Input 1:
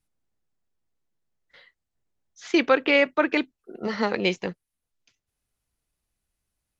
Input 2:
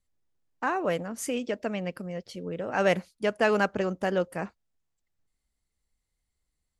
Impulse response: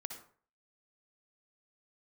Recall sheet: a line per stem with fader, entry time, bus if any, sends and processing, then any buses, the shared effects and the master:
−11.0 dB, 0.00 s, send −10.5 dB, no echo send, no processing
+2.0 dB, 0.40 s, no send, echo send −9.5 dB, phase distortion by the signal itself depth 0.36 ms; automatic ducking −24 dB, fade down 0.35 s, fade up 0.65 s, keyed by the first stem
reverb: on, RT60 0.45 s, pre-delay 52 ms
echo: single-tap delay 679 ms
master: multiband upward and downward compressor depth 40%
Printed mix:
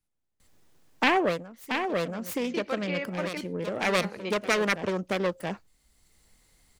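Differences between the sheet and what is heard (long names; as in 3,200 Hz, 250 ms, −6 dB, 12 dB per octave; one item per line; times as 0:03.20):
stem 1 −11.0 dB → −17.5 dB
stem 2 +2.0 dB → +9.0 dB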